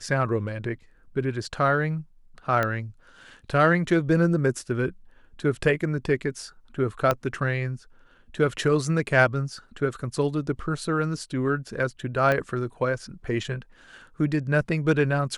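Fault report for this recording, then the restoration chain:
2.63 pop -12 dBFS
7.11 pop -9 dBFS
12.32 pop -12 dBFS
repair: de-click

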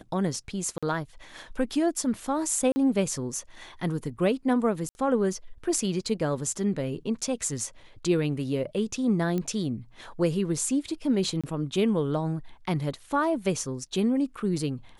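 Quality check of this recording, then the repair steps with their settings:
0.78–0.83 gap 46 ms
2.72–2.76 gap 40 ms
4.89–4.95 gap 60 ms
9.38 pop -18 dBFS
11.41–11.44 gap 26 ms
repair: de-click; interpolate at 0.78, 46 ms; interpolate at 2.72, 40 ms; interpolate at 4.89, 60 ms; interpolate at 11.41, 26 ms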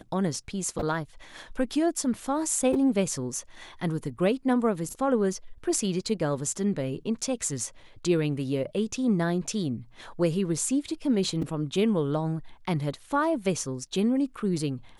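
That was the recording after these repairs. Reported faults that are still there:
none

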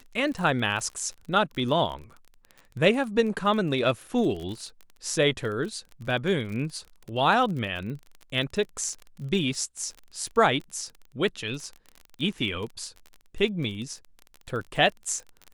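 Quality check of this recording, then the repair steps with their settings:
crackle 33/s -33 dBFS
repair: de-click

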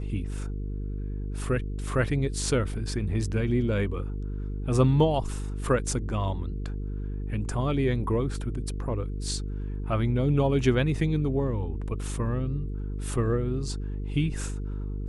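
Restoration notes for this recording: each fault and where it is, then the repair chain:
buzz 50 Hz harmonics 9 -32 dBFS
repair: de-hum 50 Hz, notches 9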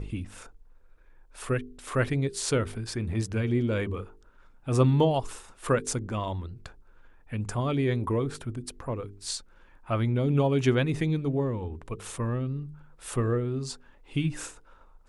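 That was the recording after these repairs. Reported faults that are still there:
none

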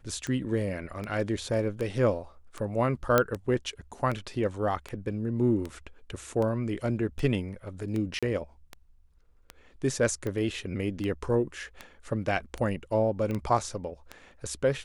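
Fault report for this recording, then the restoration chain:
tick 78 rpm -21 dBFS
3.18 pop -7 dBFS
8.19–8.23 gap 36 ms
13.31 pop -22 dBFS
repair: de-click; interpolate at 8.19, 36 ms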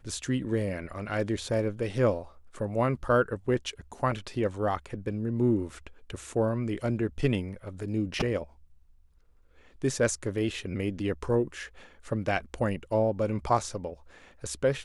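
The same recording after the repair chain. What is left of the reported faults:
none

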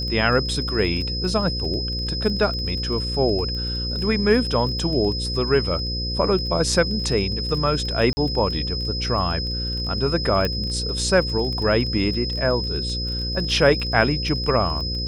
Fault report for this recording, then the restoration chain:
buzz 60 Hz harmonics 9 -28 dBFS
crackle 23/s -29 dBFS
tone 5100 Hz -27 dBFS
8.13–8.17 gap 40 ms
10.45 pop -10 dBFS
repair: de-click; de-hum 60 Hz, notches 9; notch 5100 Hz, Q 30; interpolate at 8.13, 40 ms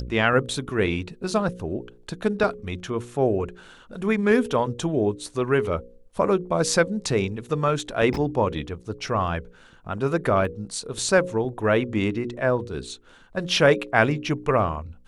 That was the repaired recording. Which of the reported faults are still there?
10.45 pop

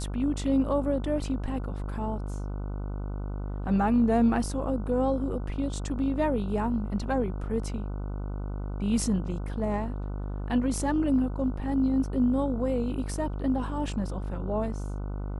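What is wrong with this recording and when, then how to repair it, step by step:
buzz 50 Hz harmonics 30 -33 dBFS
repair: de-hum 50 Hz, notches 30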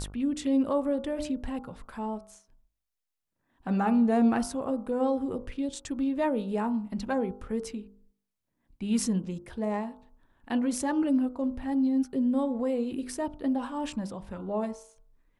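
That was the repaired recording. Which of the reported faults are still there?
none

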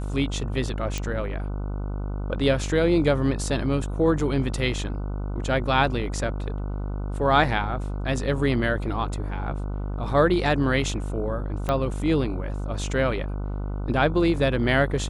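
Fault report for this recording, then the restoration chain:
buzz 50 Hz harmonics 30 -29 dBFS
0.98 pop
11.69 pop -13 dBFS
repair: de-click; de-hum 50 Hz, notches 30

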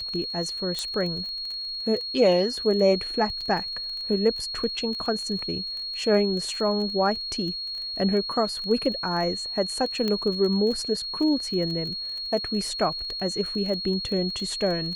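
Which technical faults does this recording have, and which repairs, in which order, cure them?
crackle 21/s -31 dBFS
tone 4300 Hz -30 dBFS
0.79 pop -15 dBFS
3.41 gap 4.6 ms
10.08 pop -14 dBFS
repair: de-click; notch 4300 Hz, Q 30; interpolate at 3.41, 4.6 ms

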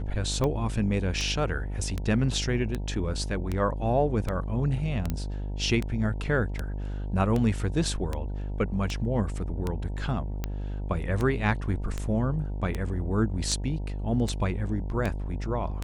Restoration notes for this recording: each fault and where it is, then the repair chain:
buzz 50 Hz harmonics 19 -32 dBFS
tick 78 rpm -16 dBFS
5.1 pop -16 dBFS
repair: de-click; de-hum 50 Hz, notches 19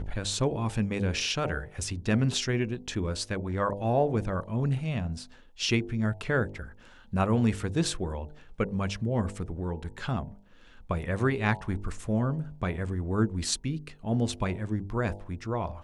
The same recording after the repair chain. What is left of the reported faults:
none

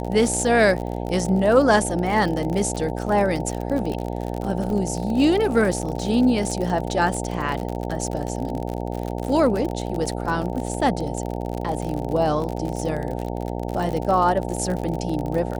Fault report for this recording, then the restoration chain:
buzz 60 Hz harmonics 15 -28 dBFS
crackle 50/s -26 dBFS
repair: de-click; de-hum 60 Hz, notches 15

